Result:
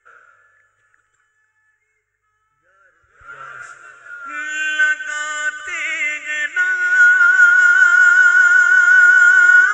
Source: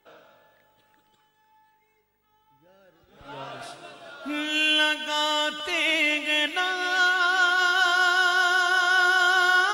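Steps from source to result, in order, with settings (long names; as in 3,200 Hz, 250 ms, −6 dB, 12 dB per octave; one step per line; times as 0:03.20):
drawn EQ curve 110 Hz 0 dB, 200 Hz −27 dB, 490 Hz −5 dB, 860 Hz −23 dB, 1,400 Hz +11 dB, 2,000 Hz +5 dB, 4,300 Hz −23 dB, 7,300 Hz +10 dB, 11,000 Hz −30 dB
level +2 dB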